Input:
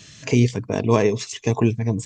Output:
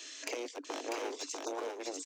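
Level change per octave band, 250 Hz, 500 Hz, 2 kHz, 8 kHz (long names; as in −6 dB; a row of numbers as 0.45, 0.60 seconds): −23.5, −17.0, −12.0, −8.0 decibels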